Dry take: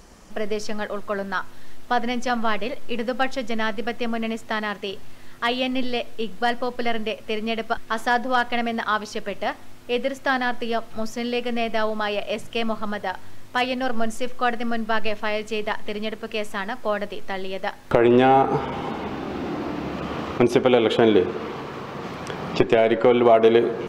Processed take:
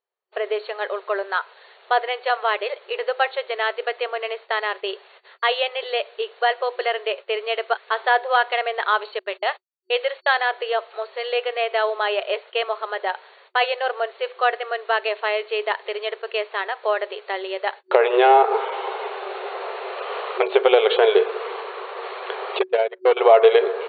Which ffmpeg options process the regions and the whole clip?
ffmpeg -i in.wav -filter_complex "[0:a]asettb=1/sr,asplit=3[link_01][link_02][link_03];[link_01]atrim=end=9.194[link_04];[link_02]atrim=start=9.19:end=10.41,asetpts=PTS-STARTPTS,afade=type=in:duration=0.004:curve=qsin,afade=type=out:start_time=1.216:duration=0.004:curve=qsin,aemphasis=mode=production:type=bsi,agate=range=-39dB:threshold=-39dB:ratio=16:release=100:detection=peak[link_05];[link_03]atrim=start=10.406[link_06];[link_04][link_05]acrossfade=duration=0.004:curve1=hsin:curve2=qsin[link_07];[link_07][link_06]acrossfade=duration=0.004:curve1=qsin:curve2=hsin,asettb=1/sr,asplit=3[link_08][link_09][link_10];[link_08]atrim=end=22.594[link_11];[link_09]atrim=start=22.59:end=23.17,asetpts=PTS-STARTPTS,afade=type=in:duration=0.004:curve=qsin,afade=type=out:start_time=0.576:duration=0.004:curve=qsin,agate=range=-36dB:threshold=-16dB:ratio=16:release=100:detection=peak,aeval=exprs='clip(val(0),-1,0.178)':channel_layout=same[link_12];[link_10]atrim=start=23.166[link_13];[link_11][link_12]acrossfade=duration=0.004:curve1=hsin:curve2=qsin[link_14];[link_14][link_13]acrossfade=duration=0.004:curve1=qsin:curve2=hsin,agate=range=-40dB:threshold=-34dB:ratio=16:detection=peak,afftfilt=real='re*between(b*sr/4096,370,4500)':imag='im*between(b*sr/4096,370,4500)':win_size=4096:overlap=0.75,volume=3dB" out.wav

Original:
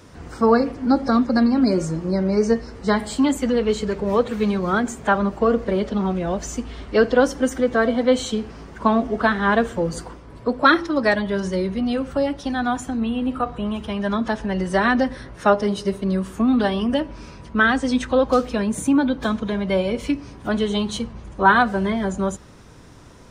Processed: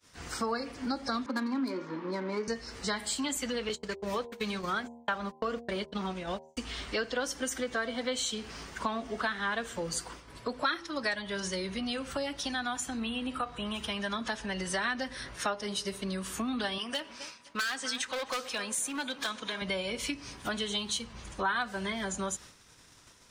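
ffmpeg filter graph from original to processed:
ffmpeg -i in.wav -filter_complex "[0:a]asettb=1/sr,asplit=3[link_01][link_02][link_03];[link_01]atrim=end=1.264[link_04];[link_02]atrim=start=1.26:end=2.48,asetpts=PTS-STARTPTS,afade=type=in:duration=0.004:curve=qsin,afade=type=out:start_time=1.216:duration=0.004:curve=qsin,highpass=frequency=220:width=0.5412,highpass=frequency=220:width=1.3066,equalizer=frequency=270:width_type=q:width=4:gain=7,equalizer=frequency=680:width_type=q:width=4:gain=-8,equalizer=frequency=990:width_type=q:width=4:gain=9,equalizer=frequency=2800:width_type=q:width=4:gain=-6,lowpass=frequency=3600:width=0.5412,lowpass=frequency=3600:width=1.3066,adynamicsmooth=sensitivity=7:basefreq=2800[link_05];[link_03]atrim=start=2.476[link_06];[link_04][link_05]acrossfade=duration=0.004:curve1=hsin:curve2=qsin[link_07];[link_07][link_06]acrossfade=duration=0.004:curve1=qsin:curve2=hsin,asettb=1/sr,asplit=3[link_08][link_09][link_10];[link_08]atrim=end=3.694[link_11];[link_09]atrim=start=3.69:end=6.57,asetpts=PTS-STARTPTS,afade=type=in:duration=0.004:curve=qsin,afade=type=out:start_time=2.876:duration=0.004:curve=qsin,agate=range=-51dB:threshold=-24dB:ratio=16:release=100:detection=peak,bandreject=frequency=78.54:width_type=h:width=4,bandreject=frequency=157.08:width_type=h:width=4,bandreject=frequency=235.62:width_type=h:width=4,bandreject=frequency=314.16:width_type=h:width=4,bandreject=frequency=392.7:width_type=h:width=4,bandreject=frequency=471.24:width_type=h:width=4,bandreject=frequency=549.78:width_type=h:width=4,bandreject=frequency=628.32:width_type=h:width=4,bandreject=frequency=706.86:width_type=h:width=4,bandreject=frequency=785.4:width_type=h:width=4,bandreject=frequency=863.94:width_type=h:width=4,bandreject=frequency=942.48:width_type=h:width=4,bandreject=frequency=1021.02:width_type=h:width=4[link_12];[link_10]atrim=start=6.566[link_13];[link_11][link_12]acrossfade=duration=0.004:curve1=hsin:curve2=qsin[link_14];[link_14][link_13]acrossfade=duration=0.004:curve1=qsin:curve2=hsin,asettb=1/sr,asplit=3[link_15][link_16][link_17];[link_15]atrim=end=16.784[link_18];[link_16]atrim=start=16.78:end=19.62,asetpts=PTS-STARTPTS,afade=type=in:duration=0.004:curve=qsin,afade=type=out:start_time=2.836:duration=0.004:curve=qsin,highpass=frequency=610:poles=1,asplit=2[link_19][link_20];[link_20]adelay=259,lowpass=frequency=1700:poles=1,volume=-17dB,asplit=2[link_21][link_22];[link_22]adelay=259,lowpass=frequency=1700:poles=1,volume=0.46,asplit=2[link_23][link_24];[link_24]adelay=259,lowpass=frequency=1700:poles=1,volume=0.46,asplit=2[link_25][link_26];[link_26]adelay=259,lowpass=frequency=1700:poles=1,volume=0.46[link_27];[link_19][link_21][link_23][link_25][link_27]amix=inputs=5:normalize=0,atrim=end_sample=125244,volume=19.5dB,asoftclip=hard,volume=-19.5dB[link_28];[link_17]atrim=start=19.616[link_29];[link_18][link_28]acrossfade=duration=0.004:curve1=hsin:curve2=qsin[link_30];[link_30][link_29]acrossfade=duration=0.004:curve1=qsin:curve2=hsin,agate=range=-33dB:threshold=-37dB:ratio=3:detection=peak,tiltshelf=frequency=1300:gain=-9,acompressor=threshold=-33dB:ratio=3" out.wav

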